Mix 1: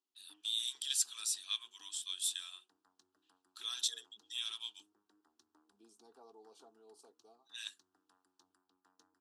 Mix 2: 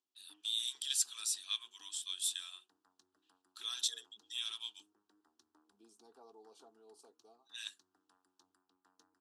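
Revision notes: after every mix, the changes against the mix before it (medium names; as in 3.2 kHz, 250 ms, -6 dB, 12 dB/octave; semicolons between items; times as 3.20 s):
no change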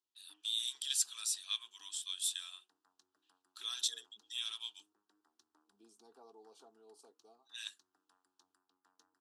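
background: add bass shelf 430 Hz -7.5 dB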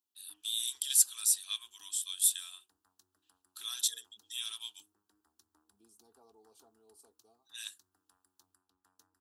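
second voice -5.0 dB; master: remove band-pass 260–5600 Hz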